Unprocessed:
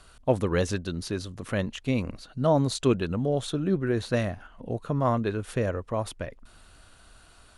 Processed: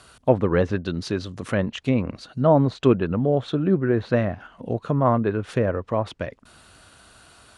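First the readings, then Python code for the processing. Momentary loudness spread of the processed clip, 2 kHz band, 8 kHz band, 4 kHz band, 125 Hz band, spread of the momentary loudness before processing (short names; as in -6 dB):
11 LU, +3.5 dB, n/a, 0.0 dB, +4.5 dB, 11 LU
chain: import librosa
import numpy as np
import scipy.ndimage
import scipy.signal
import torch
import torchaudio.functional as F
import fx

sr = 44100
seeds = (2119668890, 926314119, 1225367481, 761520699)

y = scipy.signal.sosfilt(scipy.signal.butter(2, 86.0, 'highpass', fs=sr, output='sos'), x)
y = fx.env_lowpass_down(y, sr, base_hz=1900.0, full_db=-23.5)
y = F.gain(torch.from_numpy(y), 5.5).numpy()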